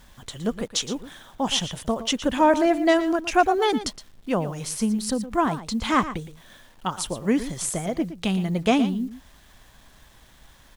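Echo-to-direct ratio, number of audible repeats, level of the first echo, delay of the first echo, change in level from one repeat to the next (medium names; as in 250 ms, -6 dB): -13.0 dB, 1, -13.0 dB, 116 ms, no regular repeats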